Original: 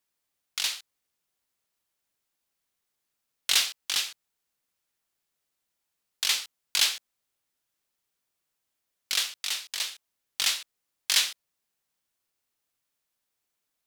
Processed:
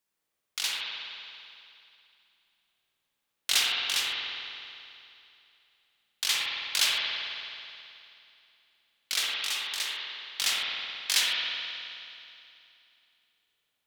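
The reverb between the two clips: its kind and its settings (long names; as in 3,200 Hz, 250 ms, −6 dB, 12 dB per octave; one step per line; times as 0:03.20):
spring reverb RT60 2.7 s, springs 53 ms, chirp 65 ms, DRR −4 dB
level −2.5 dB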